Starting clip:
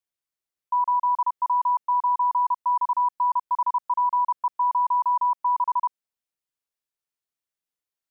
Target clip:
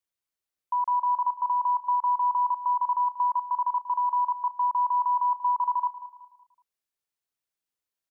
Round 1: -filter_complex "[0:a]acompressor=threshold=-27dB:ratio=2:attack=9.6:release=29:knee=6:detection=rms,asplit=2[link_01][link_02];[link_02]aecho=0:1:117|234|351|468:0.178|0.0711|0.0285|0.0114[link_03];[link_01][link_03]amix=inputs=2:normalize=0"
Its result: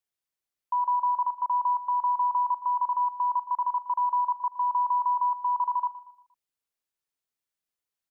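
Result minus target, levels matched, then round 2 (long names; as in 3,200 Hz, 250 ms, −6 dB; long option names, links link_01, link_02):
echo 70 ms early
-filter_complex "[0:a]acompressor=threshold=-27dB:ratio=2:attack=9.6:release=29:knee=6:detection=rms,asplit=2[link_01][link_02];[link_02]aecho=0:1:187|374|561|748:0.178|0.0711|0.0285|0.0114[link_03];[link_01][link_03]amix=inputs=2:normalize=0"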